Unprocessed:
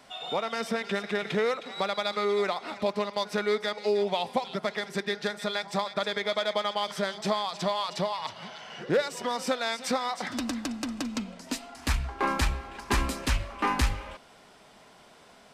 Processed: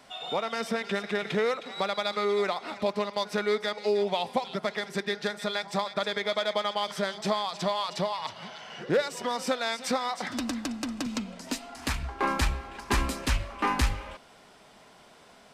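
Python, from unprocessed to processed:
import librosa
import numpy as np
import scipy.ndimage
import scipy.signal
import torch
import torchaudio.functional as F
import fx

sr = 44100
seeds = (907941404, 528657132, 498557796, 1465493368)

y = fx.band_squash(x, sr, depth_pct=40, at=(11.06, 12.03))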